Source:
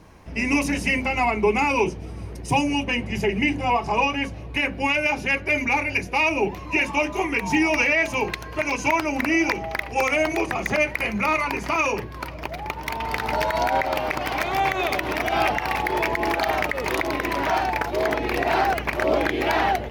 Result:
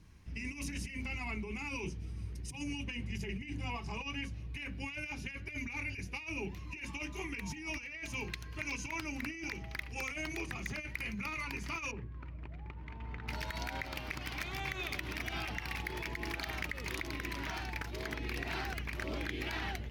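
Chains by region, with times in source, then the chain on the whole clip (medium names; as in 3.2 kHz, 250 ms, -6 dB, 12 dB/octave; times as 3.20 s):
11.91–13.28 s: median filter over 9 samples + tape spacing loss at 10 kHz 38 dB
whole clip: amplifier tone stack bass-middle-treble 6-0-2; compressor with a negative ratio -43 dBFS, ratio -0.5; treble shelf 11 kHz -6.5 dB; trim +5 dB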